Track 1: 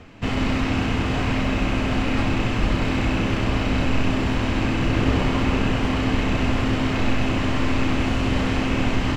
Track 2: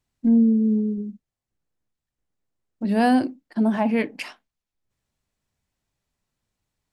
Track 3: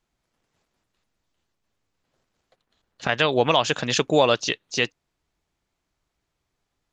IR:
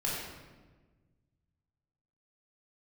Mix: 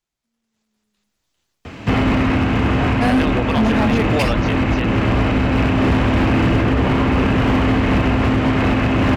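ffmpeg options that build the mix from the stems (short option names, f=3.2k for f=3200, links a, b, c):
-filter_complex "[0:a]highpass=f=45:w=0.5412,highpass=f=45:w=1.3066,adelay=1650,volume=-0.5dB[a];[1:a]alimiter=limit=-19.5dB:level=0:latency=1:release=238,volume=-0.5dB[b];[2:a]highshelf=f=2.4k:g=8.5,volume=-10dB,asplit=2[c][d];[d]apad=whole_len=305482[e];[b][e]sidechaingate=range=-55dB:threshold=-54dB:ratio=16:detection=peak[f];[a][c]amix=inputs=2:normalize=0,acrossover=split=2700[g][h];[h]acompressor=threshold=-50dB:ratio=4:attack=1:release=60[i];[g][i]amix=inputs=2:normalize=0,alimiter=limit=-18dB:level=0:latency=1:release=263,volume=0dB[j];[f][j]amix=inputs=2:normalize=0,dynaudnorm=f=210:g=9:m=13dB,asoftclip=type=hard:threshold=-11dB"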